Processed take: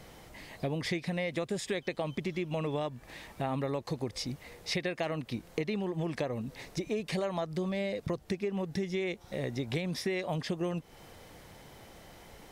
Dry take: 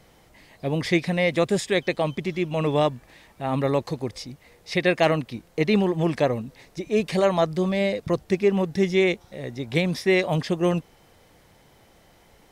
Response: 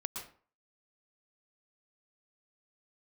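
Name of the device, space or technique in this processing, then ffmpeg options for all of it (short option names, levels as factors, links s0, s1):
serial compression, leveller first: -af "acompressor=threshold=0.0708:ratio=2,acompressor=threshold=0.0178:ratio=5,volume=1.5"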